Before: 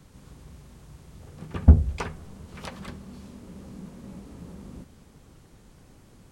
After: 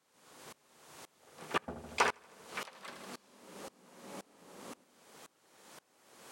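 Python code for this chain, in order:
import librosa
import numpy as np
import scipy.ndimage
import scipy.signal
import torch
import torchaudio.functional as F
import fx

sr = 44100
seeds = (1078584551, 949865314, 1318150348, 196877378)

p1 = scipy.signal.sosfilt(scipy.signal.butter(2, 550.0, 'highpass', fs=sr, output='sos'), x)
p2 = p1 + fx.echo_feedback(p1, sr, ms=79, feedback_pct=57, wet_db=-11.5, dry=0)
p3 = fx.tremolo_decay(p2, sr, direction='swelling', hz=1.9, depth_db=25)
y = p3 * 10.0 ** (10.0 / 20.0)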